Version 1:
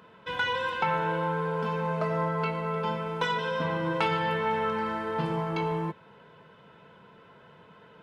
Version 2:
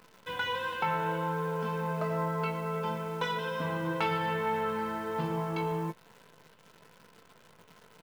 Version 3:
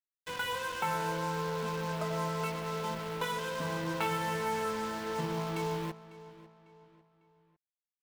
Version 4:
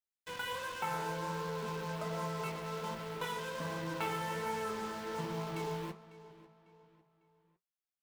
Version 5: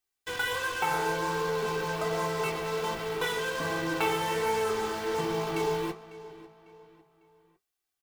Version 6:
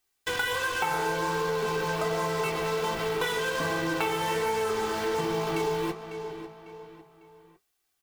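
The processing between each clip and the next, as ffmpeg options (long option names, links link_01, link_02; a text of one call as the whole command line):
ffmpeg -i in.wav -filter_complex "[0:a]acrusher=bits=9:dc=4:mix=0:aa=0.000001,asplit=2[link_01][link_02];[link_02]adelay=18,volume=-13dB[link_03];[link_01][link_03]amix=inputs=2:normalize=0,volume=-4dB" out.wav
ffmpeg -i in.wav -filter_complex "[0:a]acrusher=bits=5:mix=0:aa=0.5,asplit=2[link_01][link_02];[link_02]adelay=549,lowpass=frequency=4600:poles=1,volume=-17dB,asplit=2[link_03][link_04];[link_04]adelay=549,lowpass=frequency=4600:poles=1,volume=0.4,asplit=2[link_05][link_06];[link_06]adelay=549,lowpass=frequency=4600:poles=1,volume=0.4[link_07];[link_01][link_03][link_05][link_07]amix=inputs=4:normalize=0,volume=-2.5dB" out.wav
ffmpeg -i in.wav -af "flanger=delay=7.2:depth=9.6:regen=-63:speed=1.3:shape=sinusoidal" out.wav
ffmpeg -i in.wav -af "aecho=1:1:2.6:0.6,volume=8dB" out.wav
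ffmpeg -i in.wav -af "acompressor=threshold=-36dB:ratio=3,volume=8.5dB" out.wav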